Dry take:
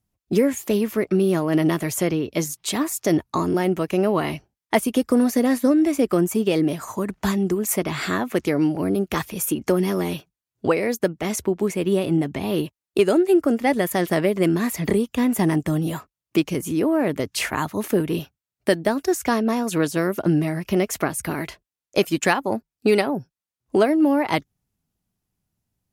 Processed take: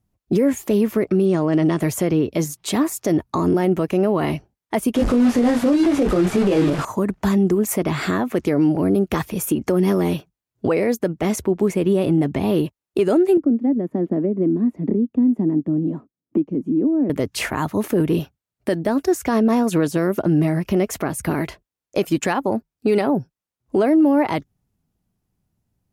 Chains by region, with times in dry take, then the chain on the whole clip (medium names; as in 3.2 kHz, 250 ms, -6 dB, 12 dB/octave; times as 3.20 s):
1.25–1.80 s: brick-wall FIR low-pass 9.3 kHz + treble shelf 6.4 kHz +5 dB
4.95–6.85 s: one-bit delta coder 64 kbps, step -20.5 dBFS + low-pass 3 kHz 6 dB/octave + doubling 21 ms -4 dB
13.37–17.10 s: band-pass filter 260 Hz, Q 3 + three bands compressed up and down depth 70%
whole clip: tilt shelf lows +4 dB, about 1.3 kHz; peak limiter -12 dBFS; trim +2.5 dB